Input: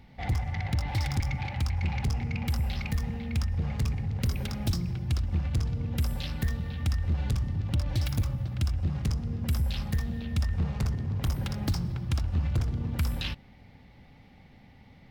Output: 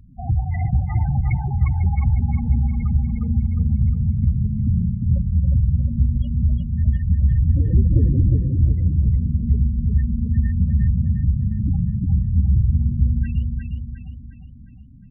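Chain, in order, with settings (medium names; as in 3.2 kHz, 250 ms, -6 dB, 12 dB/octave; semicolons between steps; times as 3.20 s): 7.44–8.37 s: square wave that keeps the level; hum notches 50/100/150/200/250/300/350/400 Hz; reverberation RT60 0.45 s, pre-delay 94 ms, DRR 12 dB; decimation with a swept rate 12×, swing 160% 1.4 Hz; loudest bins only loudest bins 8; feedback delay 357 ms, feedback 47%, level -4 dB; trim +9 dB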